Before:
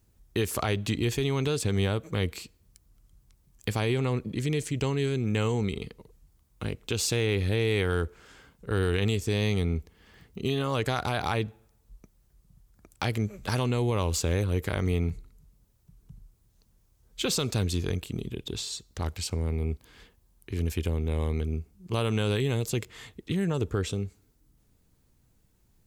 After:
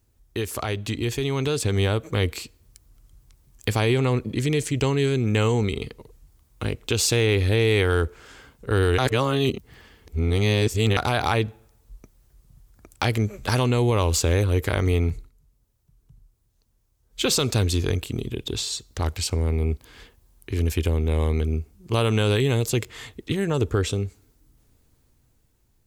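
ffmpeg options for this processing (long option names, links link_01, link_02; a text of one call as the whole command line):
ffmpeg -i in.wav -filter_complex "[0:a]asplit=5[link_01][link_02][link_03][link_04][link_05];[link_01]atrim=end=8.982[link_06];[link_02]atrim=start=8.978:end=10.972,asetpts=PTS-STARTPTS,areverse[link_07];[link_03]atrim=start=10.968:end=15.31,asetpts=PTS-STARTPTS,afade=type=out:start_time=4.152:duration=0.19:curve=qsin:silence=0.334965[link_08];[link_04]atrim=start=15.31:end=17.1,asetpts=PTS-STARTPTS,volume=-9.5dB[link_09];[link_05]atrim=start=17.1,asetpts=PTS-STARTPTS,afade=type=in:duration=0.19:curve=qsin:silence=0.334965[link_10];[link_06][link_07]acrossfade=duration=0.004:curve1=hsin:curve2=hsin[link_11];[link_08][link_09][link_10]concat=n=3:v=0:a=1[link_12];[link_11][link_12]acrossfade=duration=0.004:curve1=hsin:curve2=hsin,equalizer=frequency=180:width=5.1:gain=-9.5,dynaudnorm=framelen=590:gausssize=5:maxgain=6.5dB" out.wav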